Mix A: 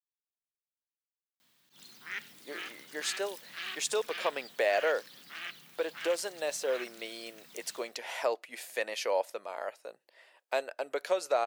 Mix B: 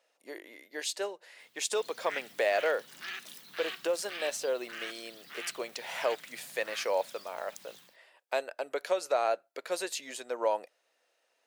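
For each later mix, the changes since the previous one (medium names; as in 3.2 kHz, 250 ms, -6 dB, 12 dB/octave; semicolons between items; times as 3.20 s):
speech: entry -2.20 s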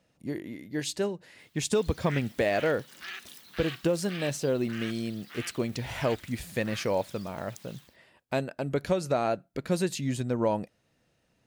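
speech: remove high-pass 480 Hz 24 dB/octave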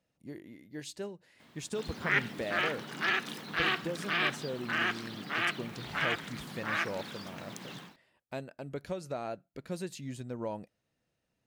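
speech -10.5 dB; background: remove pre-emphasis filter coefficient 0.9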